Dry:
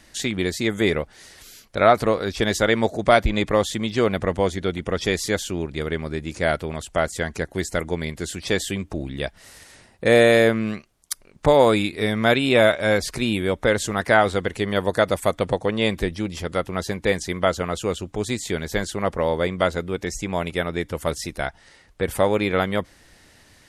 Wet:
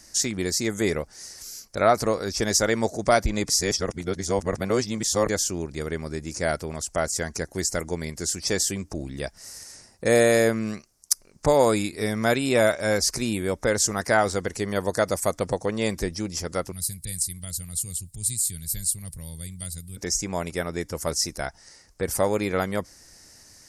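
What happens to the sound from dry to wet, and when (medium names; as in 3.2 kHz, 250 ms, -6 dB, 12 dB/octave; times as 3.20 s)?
3.49–5.29 s: reverse
16.72–19.97 s: FFT filter 140 Hz 0 dB, 230 Hz -15 dB, 440 Hz -28 dB, 1.2 kHz -28 dB, 4.1 kHz -1 dB, 6 kHz -13 dB, 8.9 kHz +11 dB
whole clip: resonant high shelf 4.3 kHz +8 dB, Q 3; trim -3.5 dB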